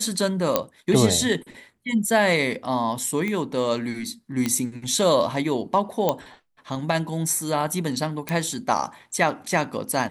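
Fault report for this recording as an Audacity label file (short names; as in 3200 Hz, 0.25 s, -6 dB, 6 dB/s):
0.560000	0.560000	pop -4 dBFS
3.280000	3.280000	pop -16 dBFS
4.460000	4.460000	pop -10 dBFS
6.090000	6.090000	pop -7 dBFS
8.290000	8.290000	pop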